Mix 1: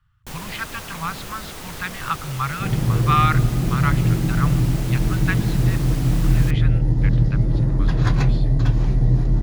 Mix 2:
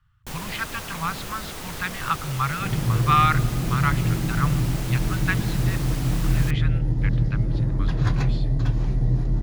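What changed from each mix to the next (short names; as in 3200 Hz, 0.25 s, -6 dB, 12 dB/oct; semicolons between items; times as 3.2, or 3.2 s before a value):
second sound -4.5 dB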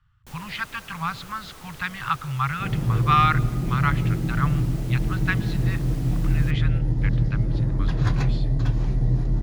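first sound -10.0 dB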